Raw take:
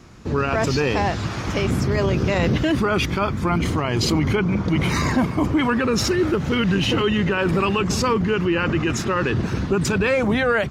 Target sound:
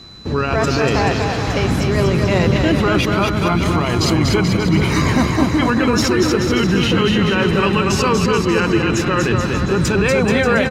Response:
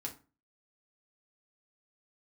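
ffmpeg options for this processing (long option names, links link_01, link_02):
-af "aecho=1:1:240|432|585.6|708.5|806.8:0.631|0.398|0.251|0.158|0.1,aeval=exprs='val(0)+0.00891*sin(2*PI*4000*n/s)':channel_layout=same,volume=2.5dB"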